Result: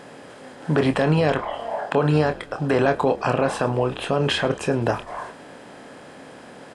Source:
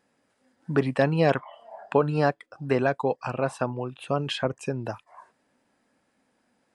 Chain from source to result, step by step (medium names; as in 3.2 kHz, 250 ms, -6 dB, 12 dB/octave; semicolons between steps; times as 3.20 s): spectral levelling over time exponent 0.6; peak limiter -14.5 dBFS, peak gain reduction 8.5 dB; doubling 26 ms -9 dB; on a send: frequency-shifting echo 106 ms, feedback 51%, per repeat -60 Hz, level -20.5 dB; on the sum: trim +5 dB